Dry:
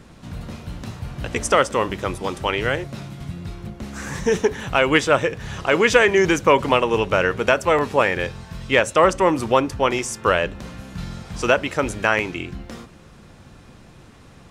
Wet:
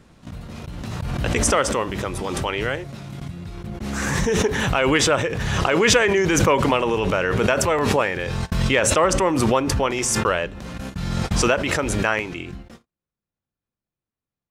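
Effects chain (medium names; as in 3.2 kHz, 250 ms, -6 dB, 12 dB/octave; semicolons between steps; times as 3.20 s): gate -33 dBFS, range -42 dB; swell ahead of each attack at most 20 dB/s; trim -3.5 dB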